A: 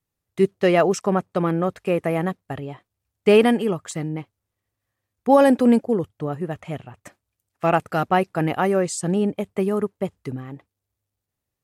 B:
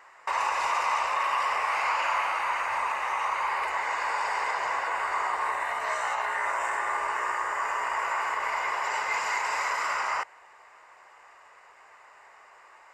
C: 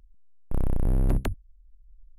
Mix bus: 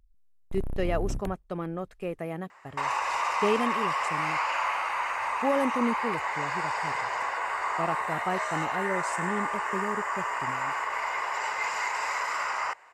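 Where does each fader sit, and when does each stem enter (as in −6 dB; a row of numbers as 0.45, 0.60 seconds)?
−12.0, −1.5, −8.5 decibels; 0.15, 2.50, 0.00 seconds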